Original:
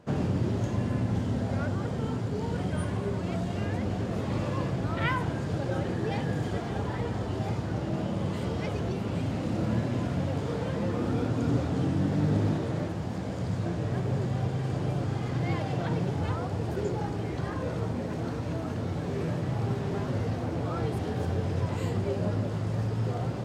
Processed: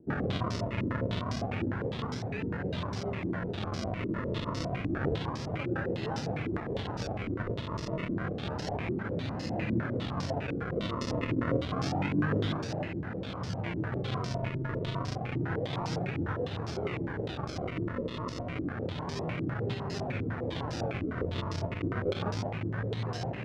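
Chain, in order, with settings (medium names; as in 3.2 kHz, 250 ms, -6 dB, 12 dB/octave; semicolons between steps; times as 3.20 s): decimation with a swept rate 38×, swing 100% 0.29 Hz; step-sequenced low-pass 9.9 Hz 330–5300 Hz; trim -5.5 dB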